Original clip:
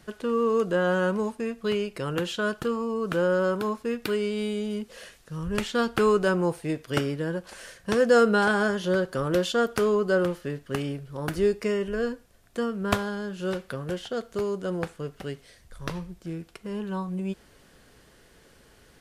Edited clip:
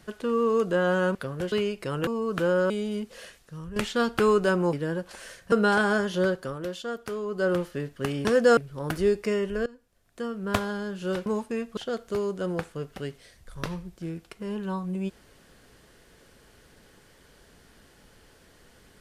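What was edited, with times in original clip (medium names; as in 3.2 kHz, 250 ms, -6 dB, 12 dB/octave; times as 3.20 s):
1.15–1.66 s: swap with 13.64–14.01 s
2.21–2.81 s: delete
3.44–4.49 s: delete
5.02–5.55 s: fade out, to -10 dB
6.52–7.11 s: delete
7.90–8.22 s: move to 10.95 s
8.97–10.26 s: dip -9.5 dB, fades 0.31 s
12.04–13.10 s: fade in, from -21 dB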